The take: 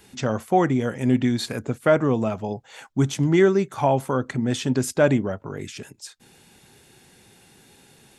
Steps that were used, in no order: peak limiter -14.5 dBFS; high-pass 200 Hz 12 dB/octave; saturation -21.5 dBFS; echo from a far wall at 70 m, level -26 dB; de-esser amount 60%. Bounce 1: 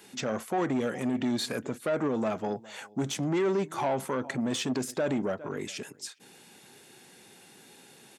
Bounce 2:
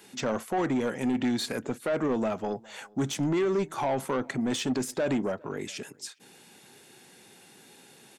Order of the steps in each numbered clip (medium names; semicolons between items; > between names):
de-esser > echo from a far wall > peak limiter > saturation > high-pass; high-pass > peak limiter > saturation > echo from a far wall > de-esser